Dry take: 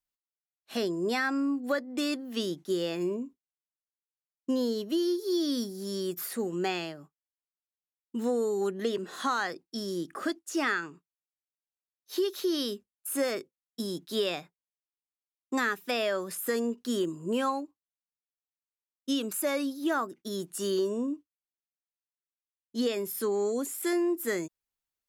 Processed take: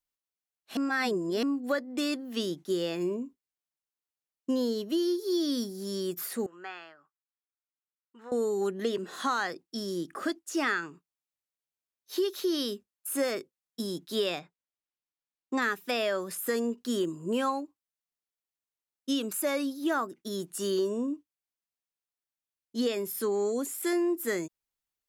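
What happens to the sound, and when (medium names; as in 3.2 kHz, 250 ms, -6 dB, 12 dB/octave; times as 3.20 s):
0.77–1.43 s: reverse
6.46–8.32 s: band-pass filter 1.4 kHz, Q 2.3
14.39–15.62 s: distance through air 73 m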